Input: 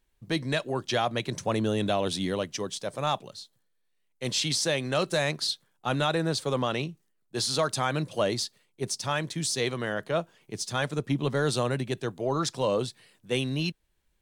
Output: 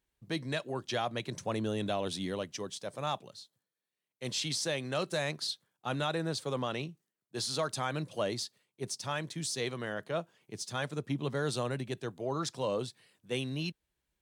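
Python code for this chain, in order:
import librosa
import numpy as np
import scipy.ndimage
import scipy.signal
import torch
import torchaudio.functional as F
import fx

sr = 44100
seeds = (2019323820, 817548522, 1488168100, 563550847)

y = scipy.signal.sosfilt(scipy.signal.butter(2, 52.0, 'highpass', fs=sr, output='sos'), x)
y = y * 10.0 ** (-6.5 / 20.0)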